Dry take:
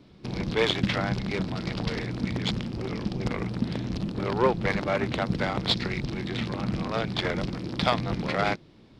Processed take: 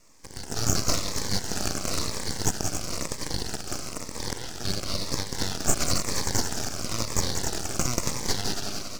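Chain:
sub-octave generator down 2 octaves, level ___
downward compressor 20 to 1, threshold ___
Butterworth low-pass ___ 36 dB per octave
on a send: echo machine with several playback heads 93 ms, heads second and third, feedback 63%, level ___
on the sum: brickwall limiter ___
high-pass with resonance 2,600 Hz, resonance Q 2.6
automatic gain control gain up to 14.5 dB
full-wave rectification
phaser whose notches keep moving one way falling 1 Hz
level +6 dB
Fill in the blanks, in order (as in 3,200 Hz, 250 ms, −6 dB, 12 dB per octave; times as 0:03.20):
−1 dB, −33 dBFS, 7,600 Hz, −11 dB, −30 dBFS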